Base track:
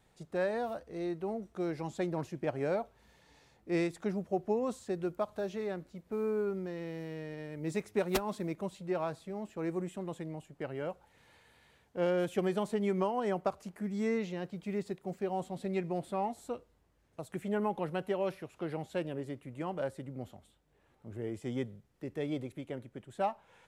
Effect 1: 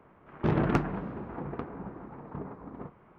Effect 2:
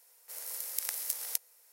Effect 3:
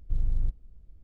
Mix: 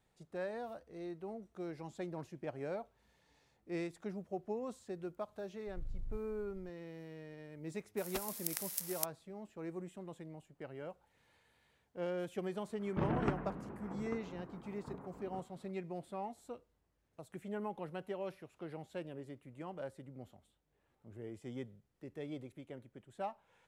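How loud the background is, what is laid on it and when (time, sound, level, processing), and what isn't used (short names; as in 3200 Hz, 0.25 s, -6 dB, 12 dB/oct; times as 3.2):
base track -8.5 dB
5.67 add 3 -5 dB + compressor 2.5:1, threshold -37 dBFS
7.68 add 2 -4.5 dB + crossover distortion -50 dBFS
12.53 add 1 -9 dB + LPF 4600 Hz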